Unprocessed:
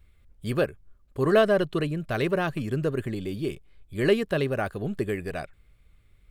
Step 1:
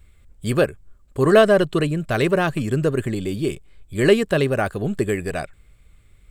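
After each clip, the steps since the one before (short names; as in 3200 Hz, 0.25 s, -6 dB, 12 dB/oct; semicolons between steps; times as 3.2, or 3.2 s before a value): bell 7800 Hz +10 dB 0.3 oct; gain +6.5 dB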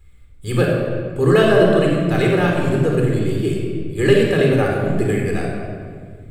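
reverb RT60 2.0 s, pre-delay 26 ms, DRR -1.5 dB; gain -4 dB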